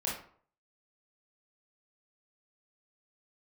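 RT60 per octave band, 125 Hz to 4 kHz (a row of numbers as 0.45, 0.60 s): 0.55, 0.50, 0.50, 0.55, 0.40, 0.30 s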